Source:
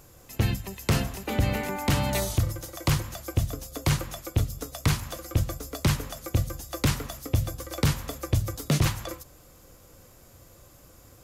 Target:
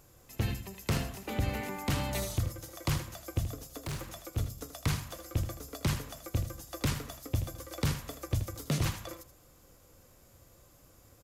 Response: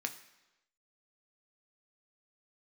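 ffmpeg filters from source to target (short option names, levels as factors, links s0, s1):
-filter_complex "[0:a]asplit=3[s0][s1][s2];[s0]afade=t=out:st=3.72:d=0.02[s3];[s1]asoftclip=type=hard:threshold=0.0447,afade=t=in:st=3.72:d=0.02,afade=t=out:st=4.36:d=0.02[s4];[s2]afade=t=in:st=4.36:d=0.02[s5];[s3][s4][s5]amix=inputs=3:normalize=0,aecho=1:1:79:0.299,volume=0.447"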